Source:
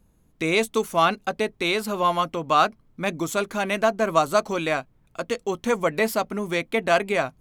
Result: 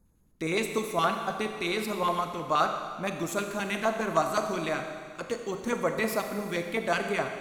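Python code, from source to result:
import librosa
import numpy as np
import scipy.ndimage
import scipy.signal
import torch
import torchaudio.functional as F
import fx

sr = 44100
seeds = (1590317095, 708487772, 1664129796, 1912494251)

y = fx.filter_lfo_notch(x, sr, shape='square', hz=9.6, low_hz=620.0, high_hz=2900.0, q=0.96)
y = fx.rev_schroeder(y, sr, rt60_s=1.9, comb_ms=29, drr_db=5.0)
y = y * librosa.db_to_amplitude(-5.0)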